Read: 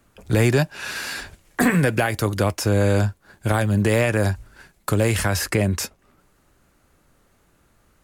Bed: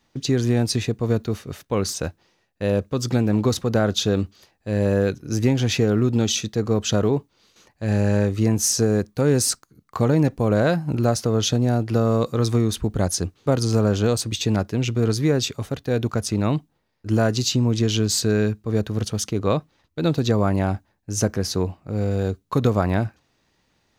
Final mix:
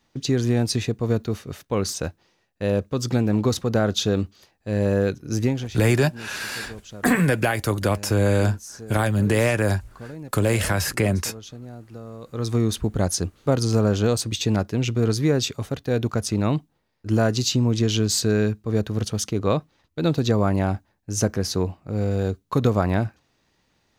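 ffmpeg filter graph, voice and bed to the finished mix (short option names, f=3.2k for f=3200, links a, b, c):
-filter_complex "[0:a]adelay=5450,volume=-1dB[a];[1:a]volume=17.5dB,afade=t=out:st=5.4:d=0.34:silence=0.125893,afade=t=in:st=12.22:d=0.42:silence=0.11885[b];[a][b]amix=inputs=2:normalize=0"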